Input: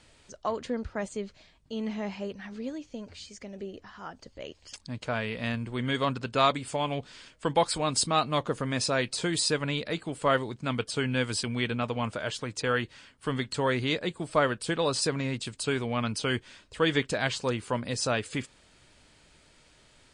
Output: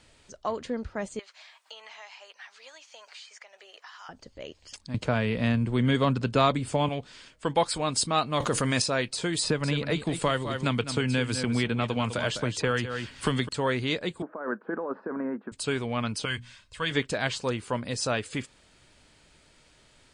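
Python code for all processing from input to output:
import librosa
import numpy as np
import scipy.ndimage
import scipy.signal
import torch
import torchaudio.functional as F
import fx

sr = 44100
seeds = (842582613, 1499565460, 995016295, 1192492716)

y = fx.chain(x, sr, fx.highpass(hz=830.0, slope=24),
    fx.band_squash(depth_pct=100), at=(1.19, 4.09))
y = fx.chain(y, sr, fx.low_shelf(hz=450.0, db=8.5),
    fx.band_squash(depth_pct=40), at=(4.94, 6.89))
y = fx.chain(y, sr, fx.high_shelf(hz=3000.0, db=10.0),
    fx.notch(hz=3500.0, q=16.0),
    fx.env_flatten(amount_pct=70), at=(8.4, 8.82))
y = fx.chain(y, sr, fx.low_shelf(hz=210.0, db=5.0),
    fx.echo_single(ms=204, db=-11.0),
    fx.band_squash(depth_pct=100), at=(9.43, 13.49))
y = fx.chain(y, sr, fx.cheby1_bandpass(low_hz=200.0, high_hz=1600.0, order=4),
    fx.over_compress(threshold_db=-31.0, ratio=-1.0), at=(14.22, 15.52))
y = fx.chain(y, sr, fx.peak_eq(hz=420.0, db=-13.0, octaves=1.4),
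    fx.hum_notches(base_hz=60, count=5),
    fx.comb(ms=1.9, depth=0.31), at=(16.25, 16.91))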